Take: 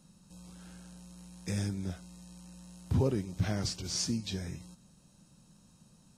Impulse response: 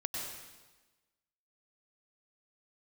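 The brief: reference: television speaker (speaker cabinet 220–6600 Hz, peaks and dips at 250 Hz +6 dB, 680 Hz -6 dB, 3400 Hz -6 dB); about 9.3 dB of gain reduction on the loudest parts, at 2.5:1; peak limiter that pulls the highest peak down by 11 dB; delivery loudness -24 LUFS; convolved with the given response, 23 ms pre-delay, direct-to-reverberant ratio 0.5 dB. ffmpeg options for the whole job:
-filter_complex "[0:a]acompressor=threshold=-38dB:ratio=2.5,alimiter=level_in=13dB:limit=-24dB:level=0:latency=1,volume=-13dB,asplit=2[a][b];[1:a]atrim=start_sample=2205,adelay=23[c];[b][c]afir=irnorm=-1:irlink=0,volume=-3dB[d];[a][d]amix=inputs=2:normalize=0,highpass=f=220:w=0.5412,highpass=f=220:w=1.3066,equalizer=f=250:t=q:w=4:g=6,equalizer=f=680:t=q:w=4:g=-6,equalizer=f=3.4k:t=q:w=4:g=-6,lowpass=f=6.6k:w=0.5412,lowpass=f=6.6k:w=1.3066,volume=25dB"

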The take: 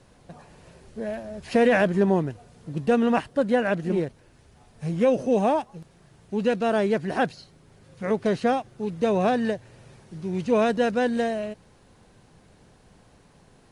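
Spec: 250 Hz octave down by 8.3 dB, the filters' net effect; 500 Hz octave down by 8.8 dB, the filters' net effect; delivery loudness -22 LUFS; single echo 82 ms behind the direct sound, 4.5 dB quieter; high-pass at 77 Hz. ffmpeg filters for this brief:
-af "highpass=77,equalizer=f=250:t=o:g=-8.5,equalizer=f=500:t=o:g=-8.5,aecho=1:1:82:0.596,volume=8dB"

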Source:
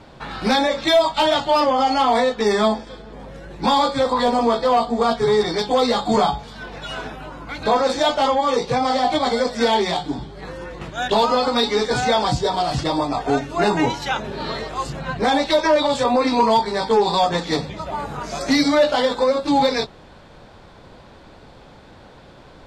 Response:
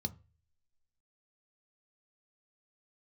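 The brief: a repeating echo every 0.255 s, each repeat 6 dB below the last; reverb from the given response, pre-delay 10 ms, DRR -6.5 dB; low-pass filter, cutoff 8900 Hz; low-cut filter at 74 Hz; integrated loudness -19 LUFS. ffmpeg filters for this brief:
-filter_complex "[0:a]highpass=74,lowpass=8.9k,aecho=1:1:255|510|765|1020|1275|1530:0.501|0.251|0.125|0.0626|0.0313|0.0157,asplit=2[a][b];[1:a]atrim=start_sample=2205,adelay=10[c];[b][c]afir=irnorm=-1:irlink=0,volume=7dB[d];[a][d]amix=inputs=2:normalize=0,volume=-11.5dB"

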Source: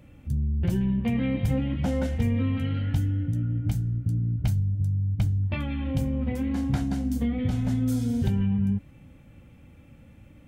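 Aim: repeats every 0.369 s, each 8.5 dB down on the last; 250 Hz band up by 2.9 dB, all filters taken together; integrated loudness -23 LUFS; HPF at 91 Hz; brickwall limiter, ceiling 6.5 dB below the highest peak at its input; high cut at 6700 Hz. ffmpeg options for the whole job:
-af "highpass=91,lowpass=6.7k,equalizer=f=250:t=o:g=3.5,alimiter=limit=-19.5dB:level=0:latency=1,aecho=1:1:369|738|1107|1476:0.376|0.143|0.0543|0.0206,volume=4.5dB"

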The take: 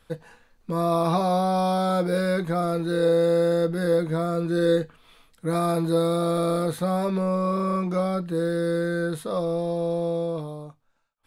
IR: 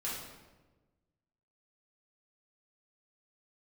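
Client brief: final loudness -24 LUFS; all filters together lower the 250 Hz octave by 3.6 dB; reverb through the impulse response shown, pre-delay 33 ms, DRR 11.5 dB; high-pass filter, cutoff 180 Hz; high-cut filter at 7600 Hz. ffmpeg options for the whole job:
-filter_complex "[0:a]highpass=180,lowpass=7.6k,equalizer=f=250:t=o:g=-3.5,asplit=2[a][b];[1:a]atrim=start_sample=2205,adelay=33[c];[b][c]afir=irnorm=-1:irlink=0,volume=-14.5dB[d];[a][d]amix=inputs=2:normalize=0,volume=1.5dB"

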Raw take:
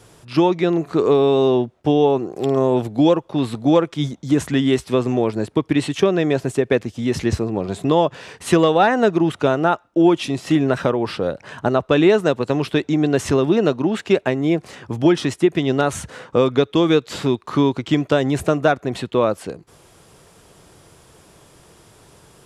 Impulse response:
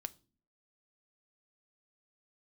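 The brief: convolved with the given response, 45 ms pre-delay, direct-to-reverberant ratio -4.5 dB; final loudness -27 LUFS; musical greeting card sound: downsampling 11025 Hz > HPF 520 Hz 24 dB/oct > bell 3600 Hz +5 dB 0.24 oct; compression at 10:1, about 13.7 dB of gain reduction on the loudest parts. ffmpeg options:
-filter_complex "[0:a]acompressor=threshold=-24dB:ratio=10,asplit=2[a][b];[1:a]atrim=start_sample=2205,adelay=45[c];[b][c]afir=irnorm=-1:irlink=0,volume=7.5dB[d];[a][d]amix=inputs=2:normalize=0,aresample=11025,aresample=44100,highpass=f=520:w=0.5412,highpass=f=520:w=1.3066,equalizer=f=3.6k:t=o:w=0.24:g=5,volume=2.5dB"

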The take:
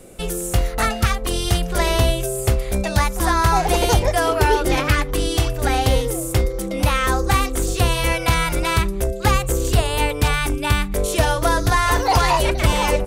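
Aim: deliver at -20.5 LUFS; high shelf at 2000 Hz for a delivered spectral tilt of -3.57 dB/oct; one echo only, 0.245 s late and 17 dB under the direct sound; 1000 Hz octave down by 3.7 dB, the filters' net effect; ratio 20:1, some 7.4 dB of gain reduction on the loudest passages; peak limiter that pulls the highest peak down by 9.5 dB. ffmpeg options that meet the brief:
-af "equalizer=f=1k:t=o:g=-6.5,highshelf=f=2k:g=7,acompressor=threshold=-18dB:ratio=20,alimiter=limit=-16dB:level=0:latency=1,aecho=1:1:245:0.141,volume=5.5dB"

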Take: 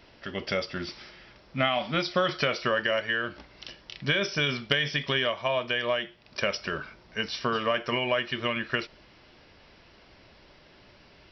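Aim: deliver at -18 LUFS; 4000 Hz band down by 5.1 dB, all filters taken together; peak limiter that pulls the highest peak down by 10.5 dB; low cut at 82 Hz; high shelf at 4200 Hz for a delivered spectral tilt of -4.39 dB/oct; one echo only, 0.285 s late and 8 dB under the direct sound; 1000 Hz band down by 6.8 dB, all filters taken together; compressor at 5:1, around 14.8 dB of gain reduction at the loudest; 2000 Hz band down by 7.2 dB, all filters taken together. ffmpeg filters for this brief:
-af "highpass=82,equalizer=f=1k:t=o:g=-7,equalizer=f=2k:t=o:g=-6.5,equalizer=f=4k:t=o:g=-7.5,highshelf=f=4.2k:g=7,acompressor=threshold=-41dB:ratio=5,alimiter=level_in=12dB:limit=-24dB:level=0:latency=1,volume=-12dB,aecho=1:1:285:0.398,volume=28.5dB"

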